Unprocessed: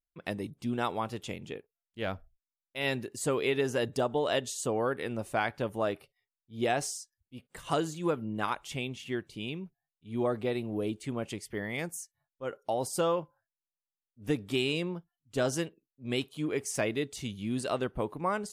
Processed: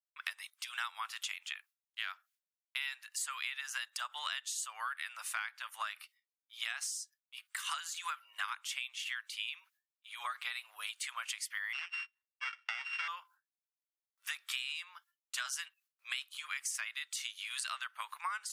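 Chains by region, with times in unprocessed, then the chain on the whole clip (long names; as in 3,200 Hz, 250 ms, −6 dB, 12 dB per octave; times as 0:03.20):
0:11.73–0:13.08: samples sorted by size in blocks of 16 samples + band-pass filter 150–3,200 Hz + high-frequency loss of the air 62 metres
whole clip: noise gate with hold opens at −56 dBFS; Butterworth high-pass 1,200 Hz 36 dB per octave; downward compressor 10 to 1, threshold −46 dBFS; level +10.5 dB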